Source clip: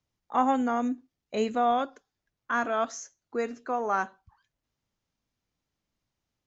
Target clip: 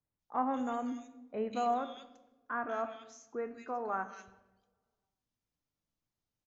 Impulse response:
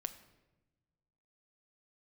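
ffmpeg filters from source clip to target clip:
-filter_complex "[0:a]asettb=1/sr,asplit=3[a][b][c];[a]atrim=end=2.534[d];[b]atrim=start=2.53:end=3.94,asetpts=PTS-STARTPTS,afade=t=in:d=0.004:c=qsin,afade=t=out:st=1.406:d=0.004:c=qsin,bass=f=250:g=0,treble=f=4k:g=-9[e];[c]atrim=start=3.936[f];[d][e]acrossfade=d=0.004:c1=hsin:c2=qsin[g];[g][f]acrossfade=d=0.004:c1=qsin:c2=hsin,acrossover=split=2200[h][i];[i]adelay=190[j];[h][j]amix=inputs=2:normalize=0[k];[1:a]atrim=start_sample=2205[l];[k][l]afir=irnorm=-1:irlink=0,volume=-6dB"

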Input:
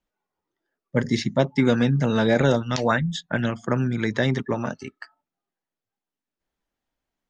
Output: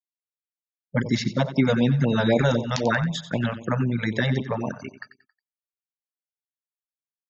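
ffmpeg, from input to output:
-af "afftfilt=real='re*gte(hypot(re,im),0.0112)':imag='im*gte(hypot(re,im),0.0112)':win_size=1024:overlap=0.75,aecho=1:1:91|182|273|364:0.224|0.0851|0.0323|0.0123,afftfilt=real='re*(1-between(b*sr/1024,280*pow(1600/280,0.5+0.5*sin(2*PI*3.9*pts/sr))/1.41,280*pow(1600/280,0.5+0.5*sin(2*PI*3.9*pts/sr))*1.41))':imag='im*(1-between(b*sr/1024,280*pow(1600/280,0.5+0.5*sin(2*PI*3.9*pts/sr))/1.41,280*pow(1600/280,0.5+0.5*sin(2*PI*3.9*pts/sr))*1.41))':win_size=1024:overlap=0.75"

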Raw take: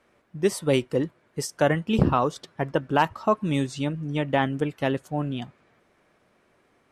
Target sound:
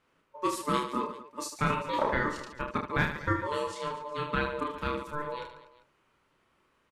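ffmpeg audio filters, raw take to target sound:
-filter_complex "[0:a]lowshelf=f=170:g=-4.5,aeval=exprs='val(0)*sin(2*PI*740*n/s)':c=same,asplit=2[a][b];[b]aecho=0:1:30|75|142.5|243.8|395.6:0.631|0.398|0.251|0.158|0.1[c];[a][c]amix=inputs=2:normalize=0,volume=-5dB"

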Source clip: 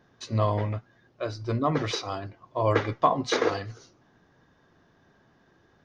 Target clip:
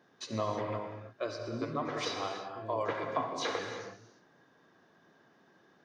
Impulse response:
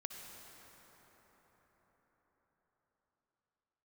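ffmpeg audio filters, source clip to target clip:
-filter_complex "[0:a]highpass=210,acompressor=threshold=-27dB:ratio=6,asettb=1/sr,asplit=3[a][b][c];[a]atrim=end=1.484[d];[b]atrim=start=1.48:end=3.59,asetpts=PTS-STARTPTS,afade=t=in:d=0.004:c=qsin,afade=t=out:st=2.106:d=0.004:c=qsin,acrossover=split=340|5100[e][f][g];[g]adelay=100[h];[f]adelay=130[i];[e][i][h]amix=inputs=3:normalize=0,atrim=end_sample=93051[j];[c]atrim=start=3.586[k];[d][j]acrossfade=d=0.004:c1=hsin:c2=qsin[l];[l][k]acrossfade=d=0.004:c1=qsin:c2=hsin[m];[1:a]atrim=start_sample=2205,afade=t=out:st=0.4:d=0.01,atrim=end_sample=18081[n];[m][n]afir=irnorm=-1:irlink=0,volume=2dB"

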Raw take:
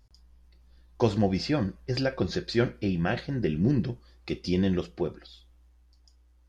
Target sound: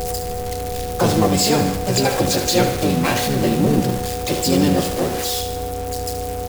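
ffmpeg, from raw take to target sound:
-filter_complex "[0:a]aeval=exprs='val(0)+0.5*0.0355*sgn(val(0))':c=same,highshelf=f=4.9k:g=10.5,aeval=exprs='val(0)+0.0316*sin(2*PI*490*n/s)':c=same,asplit=2[a][b];[b]asoftclip=type=hard:threshold=-18dB,volume=-6dB[c];[a][c]amix=inputs=2:normalize=0,asplit=3[d][e][f];[e]asetrate=37084,aresample=44100,atempo=1.18921,volume=-10dB[g];[f]asetrate=66075,aresample=44100,atempo=0.66742,volume=-1dB[h];[d][g][h]amix=inputs=3:normalize=0,aecho=1:1:74|148|222|296|370|444|518:0.316|0.187|0.11|0.0649|0.0383|0.0226|0.0133"

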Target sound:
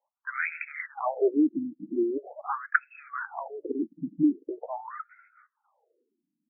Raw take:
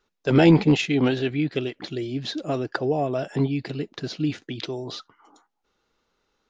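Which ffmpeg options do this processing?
-filter_complex "[0:a]acrossover=split=370[a][b];[b]dynaudnorm=f=550:g=3:m=9.5dB[c];[a][c]amix=inputs=2:normalize=0,afftfilt=real='re*between(b*sr/1024,220*pow(1900/220,0.5+0.5*sin(2*PI*0.43*pts/sr))/1.41,220*pow(1900/220,0.5+0.5*sin(2*PI*0.43*pts/sr))*1.41)':imag='im*between(b*sr/1024,220*pow(1900/220,0.5+0.5*sin(2*PI*0.43*pts/sr))/1.41,220*pow(1900/220,0.5+0.5*sin(2*PI*0.43*pts/sr))*1.41)':win_size=1024:overlap=0.75"

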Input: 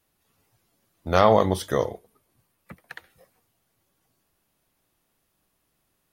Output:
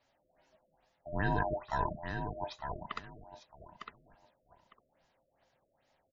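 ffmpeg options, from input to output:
-af "afftfilt=real='real(if(lt(b,1008),b+24*(1-2*mod(floor(b/24),2)),b),0)':imag='imag(if(lt(b,1008),b+24*(1-2*mod(floor(b/24),2)),b),0)':win_size=2048:overlap=0.75,areverse,acompressor=threshold=-30dB:ratio=4,areverse,aecho=1:1:905|1810|2715:0.473|0.0946|0.0189,afftfilt=real='re*lt(b*sr/1024,640*pow(7500/640,0.5+0.5*sin(2*PI*2.4*pts/sr)))':imag='im*lt(b*sr/1024,640*pow(7500/640,0.5+0.5*sin(2*PI*2.4*pts/sr)))':win_size=1024:overlap=0.75"

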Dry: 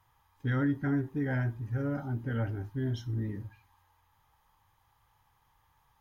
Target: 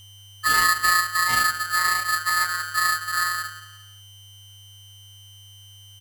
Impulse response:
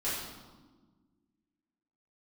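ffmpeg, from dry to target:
-filter_complex "[0:a]afwtdn=0.0126,asplit=2[a][b];[b]asetrate=35002,aresample=44100,atempo=1.25992,volume=-3dB[c];[a][c]amix=inputs=2:normalize=0,equalizer=f=98:w=0.57:g=8.5,aecho=1:1:175|350|525:0.168|0.0604|0.0218,afftfilt=real='hypot(re,im)*cos(PI*b)':imag='0':win_size=1024:overlap=0.75,afreqshift=69,aeval=exprs='val(0)+0.00282*sin(2*PI*1600*n/s)':c=same,aresample=32000,aresample=44100,lowshelf=f=67:g=11.5,aeval=exprs='val(0)*sgn(sin(2*PI*1500*n/s))':c=same,volume=7dB"

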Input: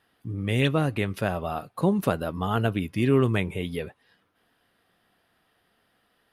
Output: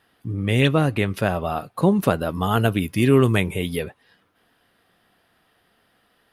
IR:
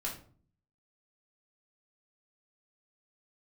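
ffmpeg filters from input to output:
-filter_complex "[0:a]asettb=1/sr,asplit=3[a][b][c];[a]atrim=end=2.294[d];[b]atrim=start=2.29:end=3.84,asetpts=PTS-STARTPTS,afade=t=in:d=0.004:c=qsin,afade=t=out:st=1.546:d=0.004:c=qsin,highshelf=f=6.4k:g=10.5[e];[c]atrim=start=3.836[f];[d][e]acrossfade=d=0.004:c1=hsin:c2=qsin[g];[g][f]acrossfade=d=0.004:c1=qsin:c2=hsin,volume=5dB"

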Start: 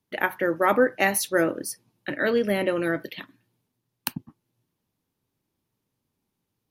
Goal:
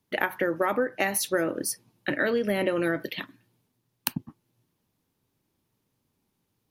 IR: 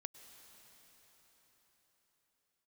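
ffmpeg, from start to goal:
-af "acompressor=threshold=-25dB:ratio=10,volume=3.5dB"

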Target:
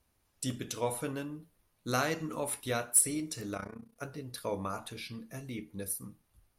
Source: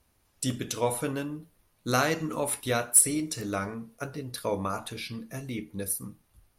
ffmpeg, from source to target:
-filter_complex "[0:a]asplit=3[a][b][c];[a]afade=t=out:st=3.54:d=0.02[d];[b]tremolo=f=30:d=0.889,afade=t=in:st=3.54:d=0.02,afade=t=out:st=3.96:d=0.02[e];[c]afade=t=in:st=3.96:d=0.02[f];[d][e][f]amix=inputs=3:normalize=0,volume=-5.5dB"

